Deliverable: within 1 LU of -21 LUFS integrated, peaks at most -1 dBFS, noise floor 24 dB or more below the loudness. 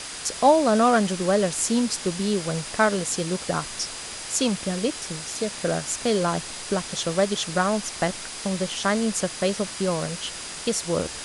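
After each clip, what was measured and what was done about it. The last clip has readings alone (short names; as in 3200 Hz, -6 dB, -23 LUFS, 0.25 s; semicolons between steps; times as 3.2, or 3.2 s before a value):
steady tone 4900 Hz; tone level -44 dBFS; noise floor -36 dBFS; noise floor target -49 dBFS; loudness -24.5 LUFS; peak -5.5 dBFS; loudness target -21.0 LUFS
-> notch 4900 Hz, Q 30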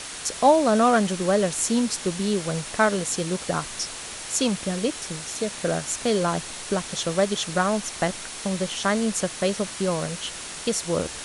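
steady tone none; noise floor -36 dBFS; noise floor target -49 dBFS
-> denoiser 13 dB, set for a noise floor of -36 dBFS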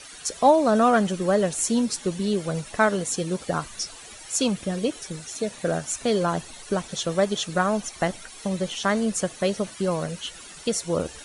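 noise floor -43 dBFS; noise floor target -49 dBFS
-> denoiser 6 dB, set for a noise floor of -43 dBFS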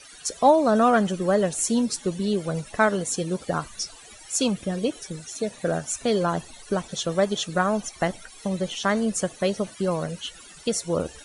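noise floor -46 dBFS; noise floor target -49 dBFS
-> denoiser 6 dB, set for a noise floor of -46 dBFS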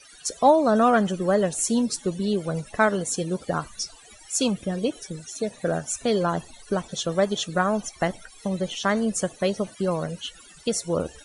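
noise floor -49 dBFS; loudness -25.0 LUFS; peak -5.5 dBFS; loudness target -21.0 LUFS
-> gain +4 dB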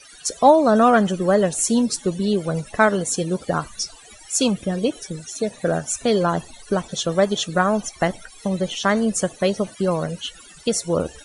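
loudness -21.0 LUFS; peak -1.5 dBFS; noise floor -45 dBFS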